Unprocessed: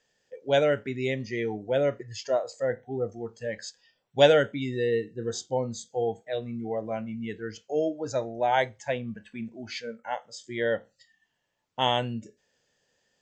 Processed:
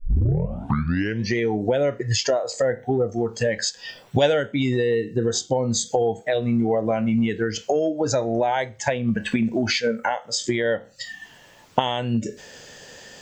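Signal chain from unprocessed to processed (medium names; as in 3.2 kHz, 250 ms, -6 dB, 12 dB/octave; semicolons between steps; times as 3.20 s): tape start-up on the opening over 1.35 s; recorder AGC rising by 76 dB/s; trim -1 dB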